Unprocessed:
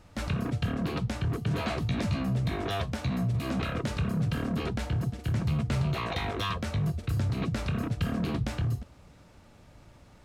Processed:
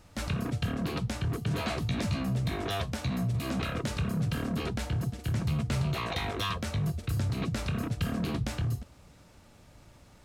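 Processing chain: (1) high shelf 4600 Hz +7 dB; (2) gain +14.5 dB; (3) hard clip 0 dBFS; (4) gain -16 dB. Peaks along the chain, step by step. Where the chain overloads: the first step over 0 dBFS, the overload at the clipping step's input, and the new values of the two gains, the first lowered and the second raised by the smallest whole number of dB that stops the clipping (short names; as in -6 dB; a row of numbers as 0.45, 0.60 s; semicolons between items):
-17.0, -2.5, -2.5, -18.5 dBFS; no overload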